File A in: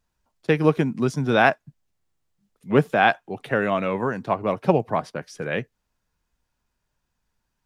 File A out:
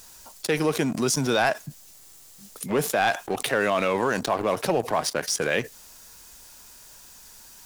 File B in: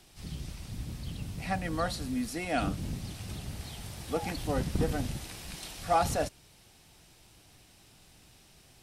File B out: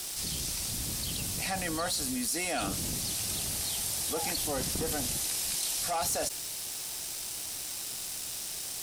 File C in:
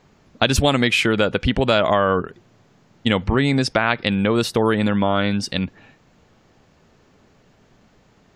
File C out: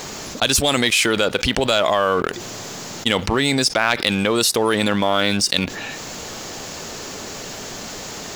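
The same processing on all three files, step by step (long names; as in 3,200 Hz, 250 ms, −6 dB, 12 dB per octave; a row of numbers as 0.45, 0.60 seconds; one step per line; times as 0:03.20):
bass and treble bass −9 dB, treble +15 dB
leveller curve on the samples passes 2
envelope flattener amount 70%
level −12 dB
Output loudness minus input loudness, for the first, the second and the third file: −2.0, +3.0, +1.0 LU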